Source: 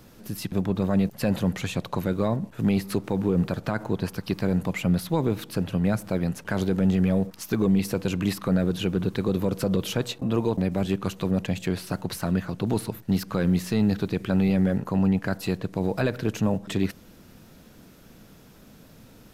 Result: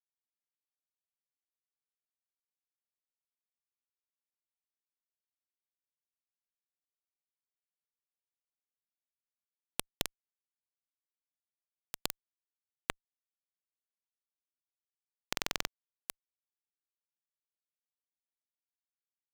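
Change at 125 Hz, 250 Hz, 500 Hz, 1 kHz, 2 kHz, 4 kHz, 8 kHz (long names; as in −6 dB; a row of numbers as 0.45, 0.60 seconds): −34.5, −35.0, −27.5, −16.0, −12.5, −8.0, −7.0 decibels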